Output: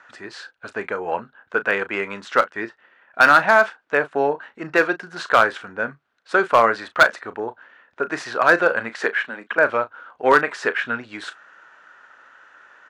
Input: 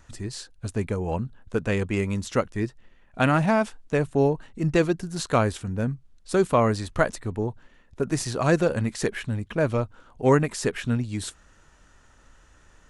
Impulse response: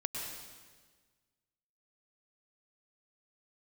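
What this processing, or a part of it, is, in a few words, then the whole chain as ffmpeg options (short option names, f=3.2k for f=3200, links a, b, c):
megaphone: -filter_complex "[0:a]highpass=590,lowpass=2.7k,equalizer=f=1.5k:t=o:w=0.47:g=9.5,asoftclip=type=hard:threshold=-13.5dB,asplit=2[a][b];[b]adelay=35,volume=-13.5dB[c];[a][c]amix=inputs=2:normalize=0,asettb=1/sr,asplit=3[d][e][f];[d]atrim=end=8.954[g];[e]atrim=start=8.95:end=9.58,asetpts=PTS-STARTPTS,afade=t=in:d=0.004:c=qsin,afade=t=out:st=0.626:d=0.004:c=qsin,highpass=f=190:w=0.5412,highpass=f=190:w=1.3066[h];[f]atrim=start=9.576[i];[g][h]acrossfade=d=0.004:c1=hsin:c2=qsin[j];[j][i]acrossfade=d=0.004:c1=qsin:c2=hsin,volume=8dB"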